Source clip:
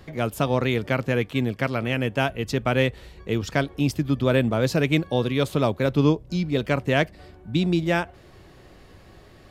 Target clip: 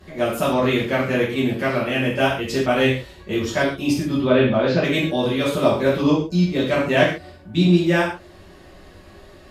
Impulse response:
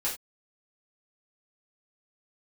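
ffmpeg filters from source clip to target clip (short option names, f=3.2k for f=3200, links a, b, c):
-filter_complex "[0:a]asettb=1/sr,asplit=3[a][b][c];[a]atrim=end=4.204[d];[b]atrim=start=4.2:end=4.84,asetpts=PTS-STARTPTS,afade=t=in:d=0.004:c=qsin,afade=t=out:st=0.636:d=0.004:c=qsin,lowpass=f=4.3k:w=0.5412,lowpass=f=4.3k:w=1.3066[e];[c]atrim=start=4.836[f];[d][e]acrossfade=d=0.004:c1=hsin:c2=qsin[g];[g][f]acrossfade=d=0.004:c1=qsin:c2=hsin[h];[1:a]atrim=start_sample=2205,asetrate=29988,aresample=44100[i];[h][i]afir=irnorm=-1:irlink=0,volume=-4dB"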